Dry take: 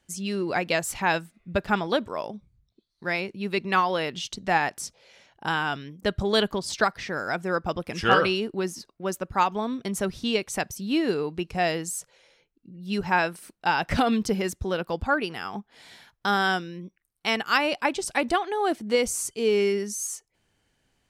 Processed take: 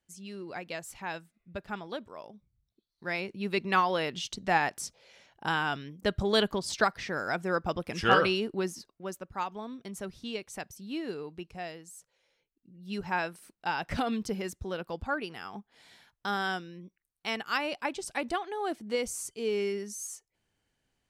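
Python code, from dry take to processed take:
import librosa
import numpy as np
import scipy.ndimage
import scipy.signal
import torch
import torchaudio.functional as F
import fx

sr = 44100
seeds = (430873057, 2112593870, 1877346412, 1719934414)

y = fx.gain(x, sr, db=fx.line((2.32, -13.5), (3.41, -3.0), (8.61, -3.0), (9.29, -11.5), (11.43, -11.5), (11.82, -18.0), (12.89, -8.0)))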